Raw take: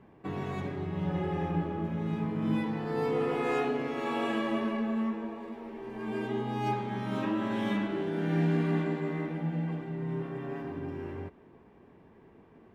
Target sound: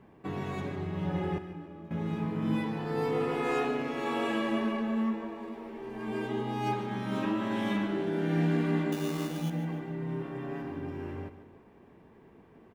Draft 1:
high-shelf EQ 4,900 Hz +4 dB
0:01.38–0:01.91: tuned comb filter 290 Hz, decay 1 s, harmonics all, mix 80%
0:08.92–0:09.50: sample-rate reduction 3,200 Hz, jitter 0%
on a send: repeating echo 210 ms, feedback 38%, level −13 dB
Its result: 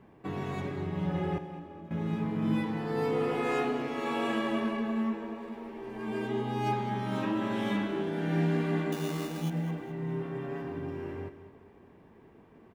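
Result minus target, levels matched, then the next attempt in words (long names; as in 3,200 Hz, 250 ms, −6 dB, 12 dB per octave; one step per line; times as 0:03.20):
echo 62 ms late
high-shelf EQ 4,900 Hz +4 dB
0:01.38–0:01.91: tuned comb filter 290 Hz, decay 1 s, harmonics all, mix 80%
0:08.92–0:09.50: sample-rate reduction 3,200 Hz, jitter 0%
on a send: repeating echo 148 ms, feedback 38%, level −13 dB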